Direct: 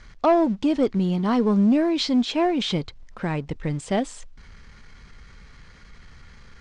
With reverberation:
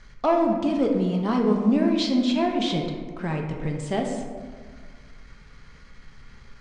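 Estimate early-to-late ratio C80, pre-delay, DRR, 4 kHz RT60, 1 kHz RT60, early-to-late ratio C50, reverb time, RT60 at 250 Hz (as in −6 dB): 6.0 dB, 5 ms, 1.5 dB, 0.85 s, 1.6 s, 4.0 dB, 1.7 s, 2.0 s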